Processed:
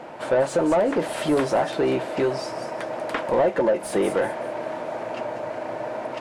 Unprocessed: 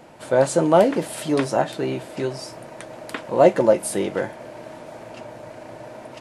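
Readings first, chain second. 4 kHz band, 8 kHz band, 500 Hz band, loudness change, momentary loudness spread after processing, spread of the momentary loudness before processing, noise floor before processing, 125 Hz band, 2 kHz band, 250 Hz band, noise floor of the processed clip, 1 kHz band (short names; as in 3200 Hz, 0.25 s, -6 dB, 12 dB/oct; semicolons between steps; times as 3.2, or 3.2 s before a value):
-0.5 dB, -6.5 dB, -2.0 dB, -4.0 dB, 10 LU, 22 LU, -42 dBFS, -5.0 dB, +1.0 dB, -1.5 dB, -34 dBFS, -1.0 dB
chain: compressor 6:1, threshold -20 dBFS, peak gain reduction 11.5 dB; overdrive pedal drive 19 dB, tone 1100 Hz, clips at -10 dBFS; thin delay 0.193 s, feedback 36%, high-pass 5300 Hz, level -5.5 dB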